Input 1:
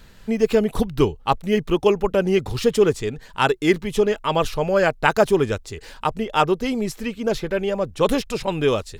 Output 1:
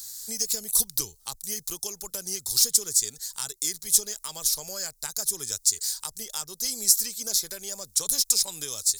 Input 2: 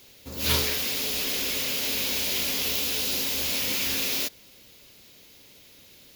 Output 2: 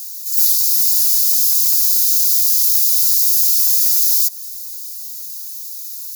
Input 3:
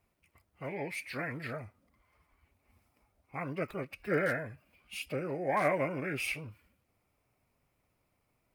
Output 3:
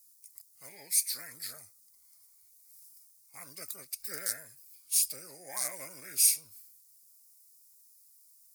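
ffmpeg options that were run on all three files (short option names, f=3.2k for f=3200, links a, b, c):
-filter_complex "[0:a]tiltshelf=f=970:g=-7,acrossover=split=150[a][b];[b]acompressor=threshold=-25dB:ratio=10[c];[a][c]amix=inputs=2:normalize=0,aexciter=amount=13.4:drive=9.8:freq=4.5k,volume=-14dB"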